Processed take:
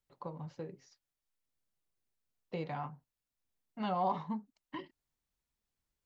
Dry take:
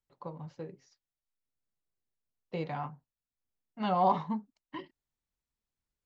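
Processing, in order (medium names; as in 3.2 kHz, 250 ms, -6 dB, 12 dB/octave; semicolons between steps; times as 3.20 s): compression 1.5:1, threshold -46 dBFS, peak gain reduction 9 dB; trim +2 dB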